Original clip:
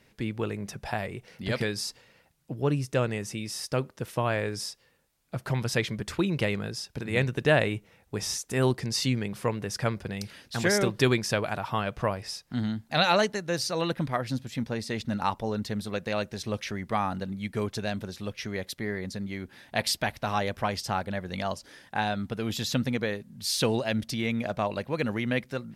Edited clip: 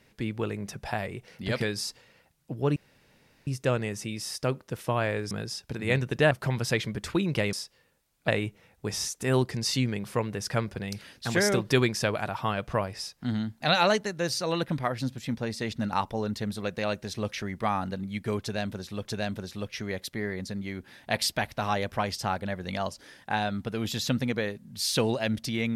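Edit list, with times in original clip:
0:02.76: splice in room tone 0.71 s
0:04.60–0:05.35: swap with 0:06.57–0:07.57
0:17.70–0:18.34: repeat, 2 plays

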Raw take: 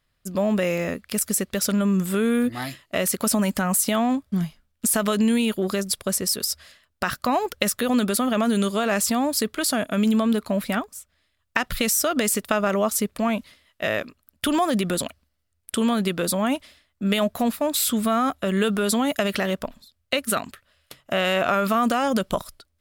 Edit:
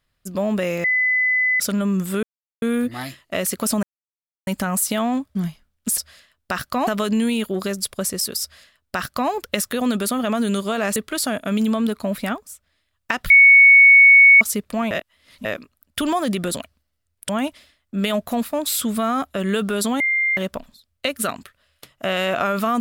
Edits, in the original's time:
0:00.84–0:01.60: beep over 2,010 Hz −15.5 dBFS
0:02.23: splice in silence 0.39 s
0:03.44: splice in silence 0.64 s
0:06.50–0:07.39: duplicate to 0:04.95
0:09.04–0:09.42: remove
0:11.76–0:12.87: beep over 2,220 Hz −6 dBFS
0:13.37–0:13.91: reverse
0:15.75–0:16.37: remove
0:19.08–0:19.45: beep over 2,100 Hz −16.5 dBFS

